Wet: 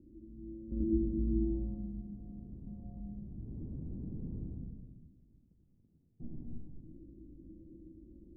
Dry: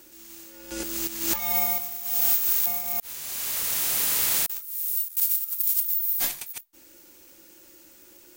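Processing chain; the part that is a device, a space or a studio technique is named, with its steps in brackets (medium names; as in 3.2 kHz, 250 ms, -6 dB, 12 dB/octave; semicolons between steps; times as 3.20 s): club heard from the street (peak limiter -19.5 dBFS, peak gain reduction 10.5 dB; low-pass 240 Hz 24 dB/octave; reverberation RT60 1.4 s, pre-delay 85 ms, DRR -2 dB); trim +8.5 dB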